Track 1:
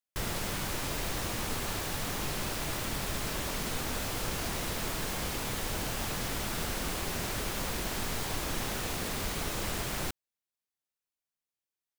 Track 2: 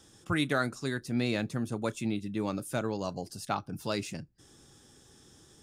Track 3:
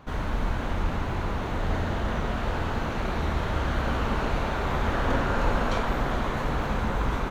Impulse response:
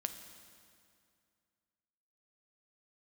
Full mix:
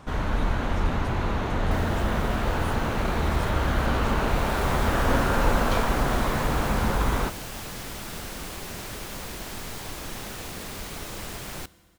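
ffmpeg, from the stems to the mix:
-filter_complex "[0:a]adelay=1550,volume=-4.5dB,asplit=2[a][b];[b]volume=-8.5dB[c];[1:a]acompressor=threshold=-33dB:ratio=6,volume=-5.5dB,asplit=2[d][e];[2:a]volume=2.5dB[f];[e]apad=whole_len=597038[g];[a][g]sidechaincompress=threshold=-53dB:ratio=8:attack=16:release=390[h];[3:a]atrim=start_sample=2205[i];[c][i]afir=irnorm=-1:irlink=0[j];[h][d][f][j]amix=inputs=4:normalize=0"

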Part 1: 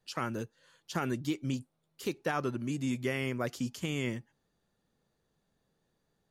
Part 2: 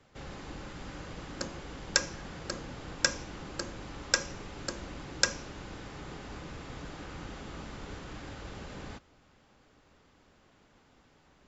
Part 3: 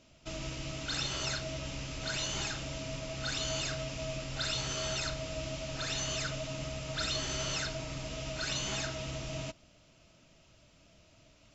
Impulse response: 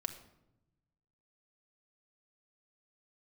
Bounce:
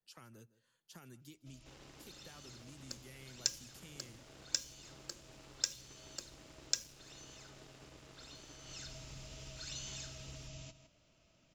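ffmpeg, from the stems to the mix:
-filter_complex "[0:a]highshelf=f=7.9k:g=8,volume=-17dB,asplit=3[a][b][c];[b]volume=-23dB[d];[c]volume=-21.5dB[e];[1:a]highpass=250,equalizer=f=350:t=o:w=1.4:g=5,aeval=exprs='sgn(val(0))*max(abs(val(0))-0.00422,0)':c=same,adelay=1500,volume=-6dB[f];[2:a]adelay=1200,volume=-8.5dB,afade=t=in:st=8.61:d=0.34:silence=0.266073,asplit=2[g][h];[h]volume=-13.5dB[i];[3:a]atrim=start_sample=2205[j];[d][j]afir=irnorm=-1:irlink=0[k];[e][i]amix=inputs=2:normalize=0,aecho=0:1:158:1[l];[a][f][g][k][l]amix=inputs=5:normalize=0,acrossover=split=140|3000[m][n][o];[n]acompressor=threshold=-58dB:ratio=3[p];[m][p][o]amix=inputs=3:normalize=0,adynamicequalizer=threshold=0.00126:dfrequency=7200:dqfactor=0.7:tfrequency=7200:tqfactor=0.7:attack=5:release=100:ratio=0.375:range=2:mode=boostabove:tftype=highshelf"

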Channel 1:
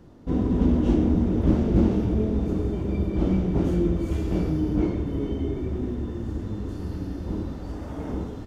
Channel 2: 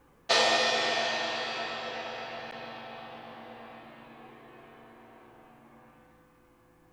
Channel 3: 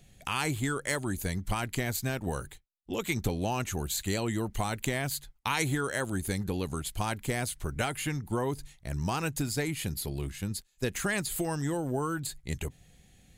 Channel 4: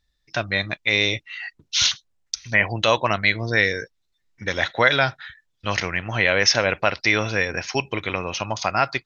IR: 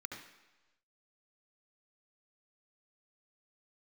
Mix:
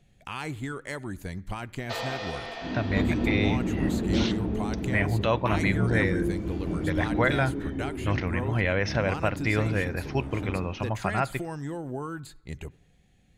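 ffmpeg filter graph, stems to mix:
-filter_complex "[0:a]adelay=2350,volume=-6dB,asplit=2[a][b];[b]volume=-5.5dB[c];[1:a]adelay=1600,volume=-7.5dB[d];[2:a]volume=-3dB,asplit=3[e][f][g];[f]volume=-18.5dB[h];[3:a]aemphasis=mode=reproduction:type=bsi,adelay=2400,volume=-6.5dB,asplit=2[i][j];[j]volume=-22.5dB[k];[g]apad=whole_len=476742[l];[a][l]sidechaingate=range=-6dB:threshold=-47dB:ratio=16:detection=peak[m];[4:a]atrim=start_sample=2205[n];[c][h][k]amix=inputs=3:normalize=0[o];[o][n]afir=irnorm=-1:irlink=0[p];[m][d][e][i][p]amix=inputs=5:normalize=0,lowpass=f=2.5k:p=1"

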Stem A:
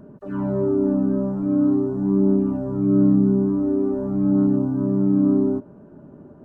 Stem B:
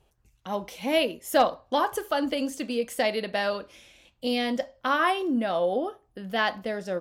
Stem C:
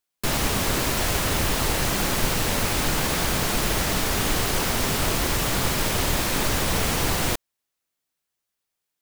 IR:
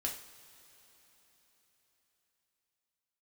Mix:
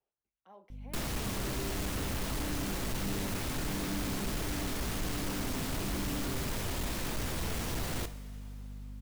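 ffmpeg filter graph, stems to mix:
-filter_complex "[0:a]adelay=900,volume=-12.5dB[a];[1:a]alimiter=limit=-22dB:level=0:latency=1:release=51,acrossover=split=230 2200:gain=0.141 1 0.251[b][c][d];[b][c][d]amix=inputs=3:normalize=0,volume=-16dB[e];[2:a]aeval=exprs='val(0)+0.0126*(sin(2*PI*50*n/s)+sin(2*PI*2*50*n/s)/2+sin(2*PI*3*50*n/s)/3+sin(2*PI*4*50*n/s)/4+sin(2*PI*5*50*n/s)/5)':c=same,adelay=700,volume=-2.5dB,asplit=2[f][g];[g]volume=-11.5dB[h];[3:a]atrim=start_sample=2205[i];[h][i]afir=irnorm=-1:irlink=0[j];[a][e][f][j]amix=inputs=4:normalize=0,asoftclip=type=tanh:threshold=-24dB,flanger=delay=1.2:depth=9:regen=-84:speed=0.46:shape=triangular,acrossover=split=370[k][l];[l]acompressor=threshold=-37dB:ratio=4[m];[k][m]amix=inputs=2:normalize=0"

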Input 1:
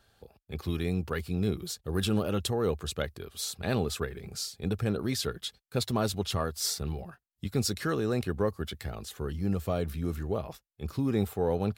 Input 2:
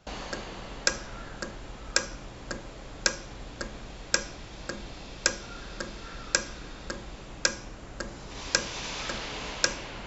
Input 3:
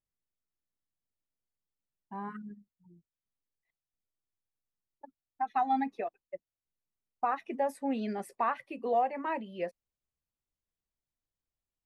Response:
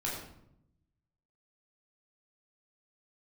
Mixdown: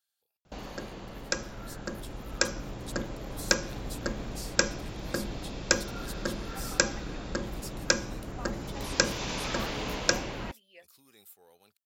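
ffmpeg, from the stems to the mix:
-filter_complex "[0:a]volume=-11.5dB[a];[1:a]equalizer=f=250:w=0.34:g=5,lowshelf=f=350:g=3.5,adelay=450,volume=-7.5dB[b];[2:a]adelay=1150,volume=-4dB[c];[a][c]amix=inputs=2:normalize=0,aderivative,alimiter=level_in=14.5dB:limit=-24dB:level=0:latency=1:release=417,volume=-14.5dB,volume=0dB[d];[b][d]amix=inputs=2:normalize=0,dynaudnorm=f=210:g=21:m=11.5dB"

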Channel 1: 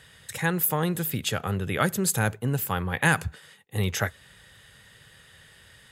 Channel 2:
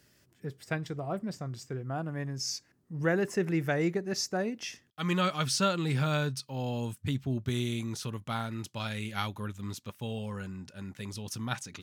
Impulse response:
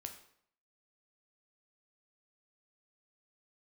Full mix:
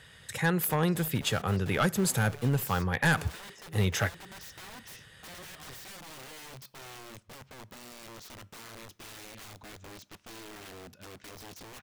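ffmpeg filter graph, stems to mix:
-filter_complex "[0:a]asoftclip=type=hard:threshold=-18.5dB,highshelf=f=8.9k:g=-7,volume=-0.5dB[a];[1:a]lowpass=f=6.7k:w=0.5412,lowpass=f=6.7k:w=1.3066,acompressor=threshold=-36dB:ratio=5,aeval=exprs='(mod(79.4*val(0)+1,2)-1)/79.4':c=same,adelay=250,volume=-5.5dB,asplit=2[b][c];[c]volume=-10dB[d];[2:a]atrim=start_sample=2205[e];[d][e]afir=irnorm=-1:irlink=0[f];[a][b][f]amix=inputs=3:normalize=0"

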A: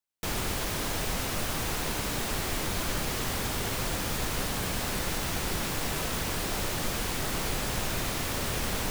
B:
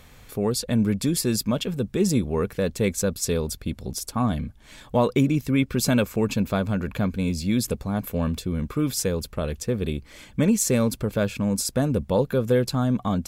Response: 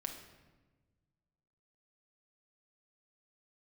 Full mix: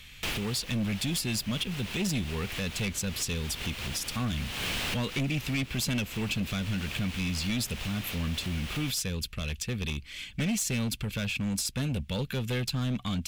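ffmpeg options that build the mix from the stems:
-filter_complex "[0:a]volume=-2.5dB[a];[1:a]equalizer=f=620:t=o:w=2.5:g=-13.5,volume=-1.5dB,asplit=2[b][c];[c]apad=whole_len=392881[d];[a][d]sidechaincompress=threshold=-42dB:ratio=6:attack=8.4:release=256[e];[e][b]amix=inputs=2:normalize=0,equalizer=f=2.8k:t=o:w=1.3:g=14.5,acrossover=split=460[f][g];[g]acompressor=threshold=-30dB:ratio=2.5[h];[f][h]amix=inputs=2:normalize=0,asoftclip=type=hard:threshold=-25.5dB"

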